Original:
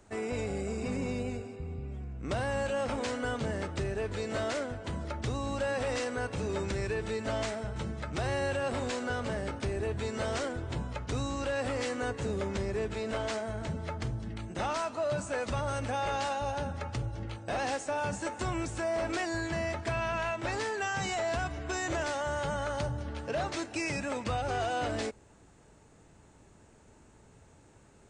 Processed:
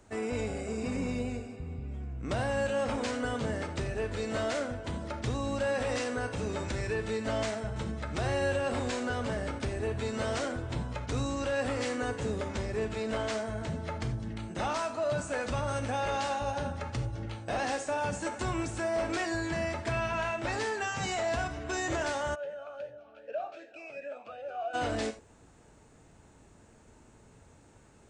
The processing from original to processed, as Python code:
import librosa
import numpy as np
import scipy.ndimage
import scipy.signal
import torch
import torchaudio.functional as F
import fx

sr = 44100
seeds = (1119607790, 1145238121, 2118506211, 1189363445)

y = fx.rev_gated(x, sr, seeds[0], gate_ms=110, shape='flat', drr_db=7.5)
y = fx.vowel_sweep(y, sr, vowels='a-e', hz=2.6, at=(22.34, 24.73), fade=0.02)